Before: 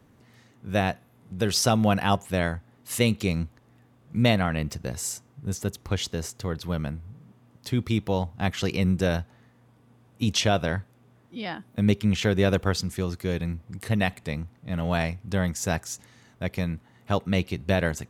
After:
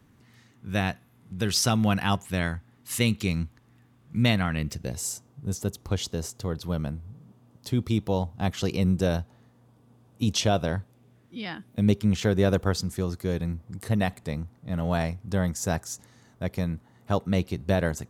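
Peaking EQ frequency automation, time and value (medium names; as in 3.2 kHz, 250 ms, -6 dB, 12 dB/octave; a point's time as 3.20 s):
peaking EQ -7 dB 1.2 oct
4.51 s 570 Hz
5.09 s 2 kHz
10.79 s 2 kHz
11.49 s 590 Hz
11.98 s 2.5 kHz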